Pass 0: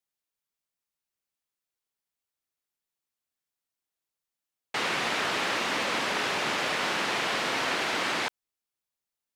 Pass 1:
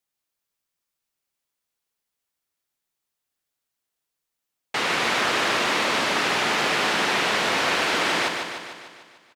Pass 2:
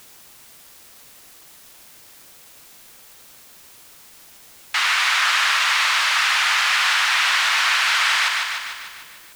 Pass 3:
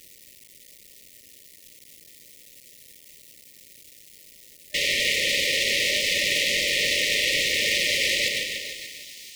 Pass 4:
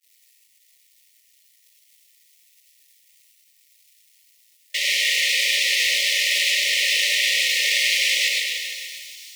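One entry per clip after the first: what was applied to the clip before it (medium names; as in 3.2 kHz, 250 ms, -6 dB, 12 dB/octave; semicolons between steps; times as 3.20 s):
feedback delay 149 ms, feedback 59%, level -5.5 dB; trim +4.5 dB
high-pass 1.1 kHz 24 dB/octave; in parallel at +2 dB: peak limiter -21 dBFS, peak gain reduction 8.5 dB; on the sum: word length cut 8-bit, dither triangular; trim +1.5 dB
cycle switcher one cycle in 2, muted; feedback echo behind a high-pass 576 ms, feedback 77%, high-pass 4.5 kHz, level -16 dB; FFT band-reject 610–1800 Hz
high-pass 1.1 kHz 12 dB/octave; expander -39 dBFS; gated-style reverb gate 140 ms rising, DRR 0.5 dB; trim +1 dB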